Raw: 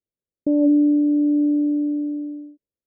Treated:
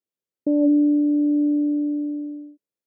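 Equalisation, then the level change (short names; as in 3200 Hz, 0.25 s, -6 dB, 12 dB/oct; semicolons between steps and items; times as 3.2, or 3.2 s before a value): Bessel high-pass 190 Hz; 0.0 dB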